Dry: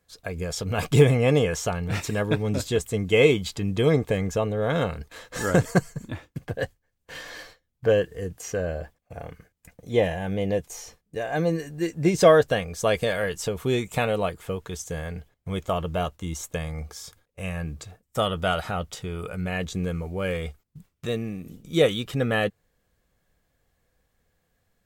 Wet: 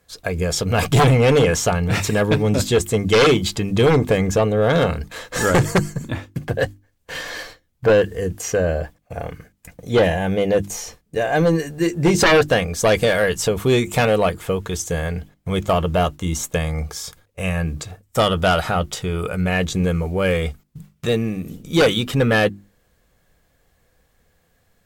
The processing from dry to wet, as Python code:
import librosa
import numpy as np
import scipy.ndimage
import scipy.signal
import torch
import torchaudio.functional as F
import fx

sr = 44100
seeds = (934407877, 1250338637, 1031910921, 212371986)

y = fx.hum_notches(x, sr, base_hz=50, count=7)
y = fx.fold_sine(y, sr, drive_db=12, ceiling_db=-3.0)
y = y * librosa.db_to_amplitude(-6.5)